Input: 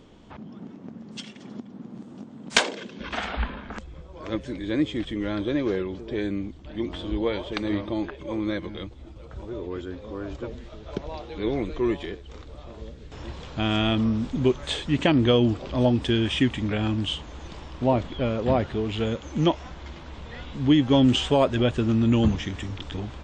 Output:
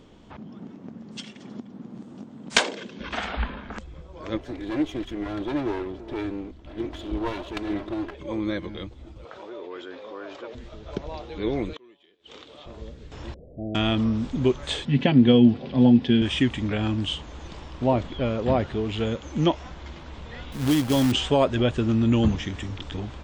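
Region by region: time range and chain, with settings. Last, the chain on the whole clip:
0:04.37–0:08.15: lower of the sound and its delayed copy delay 3 ms + high-shelf EQ 6,200 Hz −11 dB
0:09.25–0:10.55: band-pass filter 520–4,800 Hz + envelope flattener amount 50%
0:11.73–0:12.66: high-pass filter 250 Hz + parametric band 3,200 Hz +10 dB 0.74 octaves + gate with flip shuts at −28 dBFS, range −28 dB
0:13.34–0:13.75: Butterworth low-pass 660 Hz 72 dB per octave + low-shelf EQ 400 Hz −8.5 dB
0:14.85–0:16.22: loudspeaker in its box 120–4,700 Hz, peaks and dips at 140 Hz +8 dB, 240 Hz +9 dB, 1,200 Hz −9 dB + notch comb filter 310 Hz
0:20.52–0:21.12: log-companded quantiser 4 bits + downward compressor 2 to 1, threshold −19 dBFS
whole clip: no processing

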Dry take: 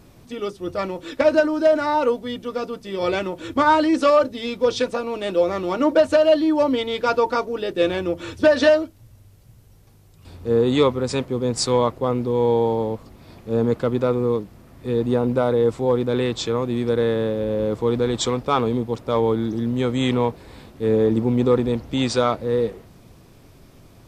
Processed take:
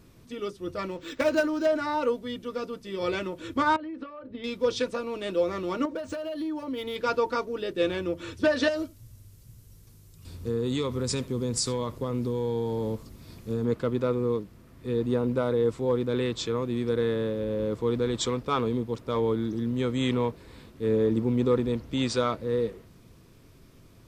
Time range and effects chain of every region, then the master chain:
0:00.91–0:01.66: high-shelf EQ 3,000 Hz +8.5 dB + linearly interpolated sample-rate reduction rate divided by 4×
0:03.76–0:04.44: downward compressor 20 to 1, threshold −27 dBFS + transient designer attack +5 dB, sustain −1 dB + high-frequency loss of the air 460 metres
0:05.85–0:06.96: parametric band 6,600 Hz +5 dB 0.43 octaves + downward compressor 16 to 1, threshold −22 dBFS + linearly interpolated sample-rate reduction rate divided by 3×
0:08.68–0:13.65: bass and treble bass +5 dB, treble +9 dB + downward compressor, threshold −18 dBFS + single-tap delay 77 ms −21 dB
whole clip: parametric band 770 Hz −8.5 dB 0.34 octaves; notch filter 580 Hz, Q 18; level −5.5 dB

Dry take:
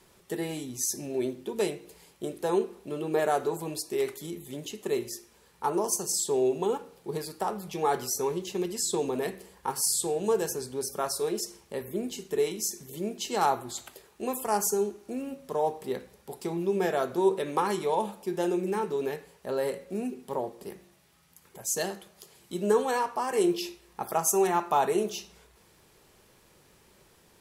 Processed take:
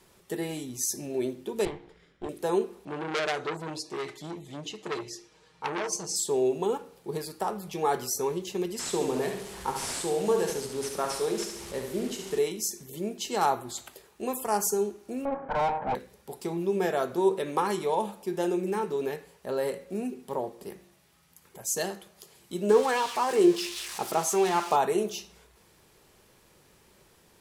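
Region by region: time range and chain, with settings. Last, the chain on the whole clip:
0:01.65–0:02.29: lower of the sound and its delayed copy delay 0.57 ms + low-pass filter 2,900 Hz
0:02.85–0:06.16: Chebyshev low-pass filter 5,200 Hz + comb filter 6.4 ms, depth 75% + saturating transformer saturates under 3,400 Hz
0:08.79–0:12.39: linear delta modulator 64 kbit/s, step −37.5 dBFS + repeating echo 70 ms, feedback 47%, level −6 dB
0:15.25–0:15.95: lower of the sound and its delayed copy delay 1.3 ms + low-pass filter 1,700 Hz 24 dB per octave + mid-hump overdrive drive 26 dB, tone 1,200 Hz, clips at −18.5 dBFS
0:22.69–0:24.76: spike at every zero crossing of −22 dBFS + high-frequency loss of the air 62 metres + auto-filter bell 1.4 Hz 290–3,600 Hz +7 dB
whole clip: no processing

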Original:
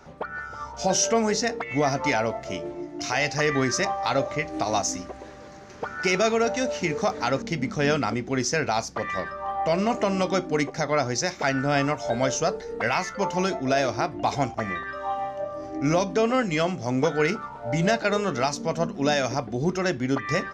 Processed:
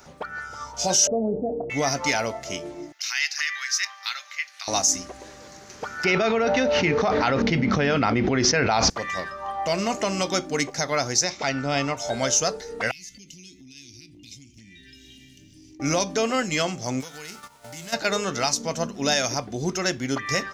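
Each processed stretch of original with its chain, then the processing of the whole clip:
0:01.07–0:01.70: elliptic low-pass filter 670 Hz, stop band 70 dB + double-tracking delay 28 ms −14 dB + envelope flattener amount 50%
0:02.92–0:04.68: high-pass filter 1,500 Hz 24 dB per octave + parametric band 8,200 Hz −12 dB 0.81 octaves
0:06.04–0:08.90: Gaussian smoothing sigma 2.5 samples + envelope flattener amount 100%
0:11.24–0:11.97: low-pass filter 4,800 Hz + parametric band 1,600 Hz −7.5 dB 0.31 octaves
0:12.91–0:15.80: elliptic band-stop filter 300–2,500 Hz, stop band 50 dB + downward compressor 8 to 1, threshold −44 dBFS
0:17.00–0:17.92: spectral envelope flattened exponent 0.6 + noise gate −36 dBFS, range −14 dB + downward compressor 5 to 1, threshold −38 dBFS
whole clip: first-order pre-emphasis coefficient 0.8; boost into a limiter +19 dB; level −7.5 dB

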